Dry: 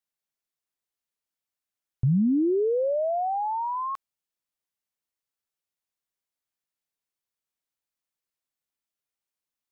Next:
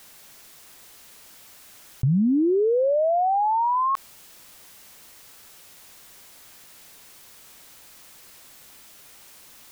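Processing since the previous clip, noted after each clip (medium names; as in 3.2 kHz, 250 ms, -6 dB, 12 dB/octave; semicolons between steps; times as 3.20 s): level flattener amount 70%; trim +1 dB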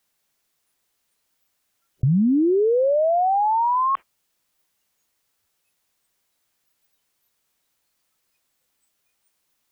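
spectral noise reduction 26 dB; trim +2 dB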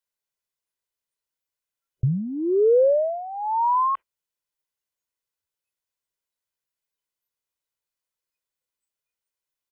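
comb 2 ms, depth 36%; upward expansion 2.5:1, over -27 dBFS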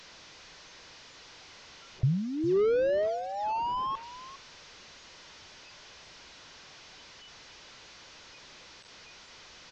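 one-bit delta coder 32 kbps, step -40.5 dBFS; delay 405 ms -15 dB; trim -4 dB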